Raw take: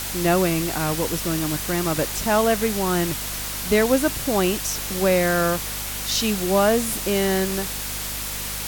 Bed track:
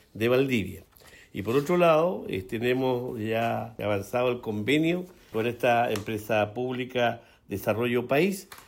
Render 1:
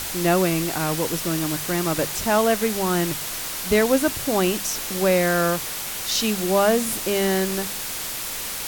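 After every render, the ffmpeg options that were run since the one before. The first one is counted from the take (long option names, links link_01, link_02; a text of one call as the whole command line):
ffmpeg -i in.wav -af "bandreject=frequency=50:width_type=h:width=4,bandreject=frequency=100:width_type=h:width=4,bandreject=frequency=150:width_type=h:width=4,bandreject=frequency=200:width_type=h:width=4,bandreject=frequency=250:width_type=h:width=4" out.wav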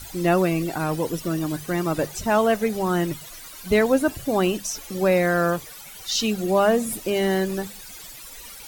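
ffmpeg -i in.wav -af "afftdn=noise_reduction=16:noise_floor=-30" out.wav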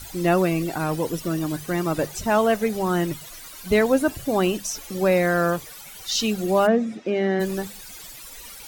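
ffmpeg -i in.wav -filter_complex "[0:a]asplit=3[link_01][link_02][link_03];[link_01]afade=type=out:start_time=6.66:duration=0.02[link_04];[link_02]highpass=200,equalizer=frequency=220:width_type=q:width=4:gain=6,equalizer=frequency=1000:width_type=q:width=4:gain=-8,equalizer=frequency=3000:width_type=q:width=4:gain=-8,equalizer=frequency=4400:width_type=q:width=4:gain=-10,lowpass=frequency=4500:width=0.5412,lowpass=frequency=4500:width=1.3066,afade=type=in:start_time=6.66:duration=0.02,afade=type=out:start_time=7.39:duration=0.02[link_05];[link_03]afade=type=in:start_time=7.39:duration=0.02[link_06];[link_04][link_05][link_06]amix=inputs=3:normalize=0" out.wav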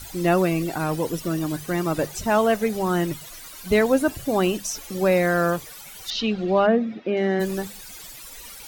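ffmpeg -i in.wav -filter_complex "[0:a]asettb=1/sr,asplit=3[link_01][link_02][link_03];[link_01]atrim=end=6.104[link_04];[link_02]atrim=start=6.1:end=7.17,asetpts=PTS-STARTPTS,afade=type=in:duration=0.004:curve=qsin,afade=type=out:start_time=1.066:duration=0.004:curve=qsin,lowpass=frequency=4200:width=0.5412,lowpass=frequency=4200:width=1.3066[link_05];[link_03]atrim=start=7.166[link_06];[link_04][link_05]acrossfade=duration=0.004:curve1=hsin:curve2=qsin[link_07];[link_07][link_06]acrossfade=duration=0.004:curve1=qsin:curve2=hsin" out.wav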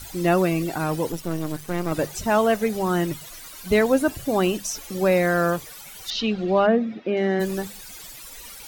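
ffmpeg -i in.wav -filter_complex "[0:a]asettb=1/sr,asplit=3[link_01][link_02][link_03];[link_01]atrim=end=1.124[link_04];[link_02]atrim=start=1.12:end=1.92,asetpts=PTS-STARTPTS,afade=type=in:duration=0.004:curve=qsin,afade=type=out:start_time=0.796:duration=0.004:curve=qsin,aeval=exprs='if(lt(val(0),0),0.251*val(0),val(0))':channel_layout=same[link_05];[link_03]atrim=start=1.916[link_06];[link_04][link_05]acrossfade=duration=0.004:curve1=hsin:curve2=qsin[link_07];[link_07][link_06]acrossfade=duration=0.004:curve1=qsin:curve2=hsin" out.wav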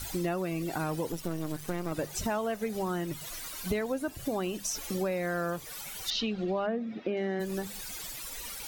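ffmpeg -i in.wav -af "acompressor=threshold=-29dB:ratio=6" out.wav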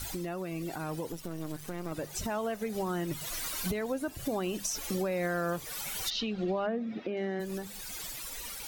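ffmpeg -i in.wav -af "alimiter=level_in=3dB:limit=-24dB:level=0:latency=1:release=426,volume=-3dB,dynaudnorm=framelen=390:gausssize=11:maxgain=4.5dB" out.wav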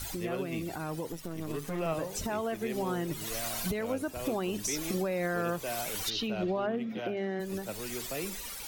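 ffmpeg -i in.wav -i bed.wav -filter_complex "[1:a]volume=-14.5dB[link_01];[0:a][link_01]amix=inputs=2:normalize=0" out.wav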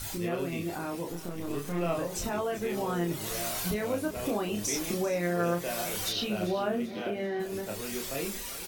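ffmpeg -i in.wav -filter_complex "[0:a]asplit=2[link_01][link_02];[link_02]adelay=29,volume=-3dB[link_03];[link_01][link_03]amix=inputs=2:normalize=0,aecho=1:1:391|782|1173|1564:0.168|0.0755|0.034|0.0153" out.wav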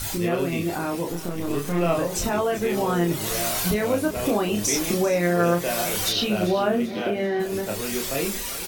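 ffmpeg -i in.wav -af "volume=8dB" out.wav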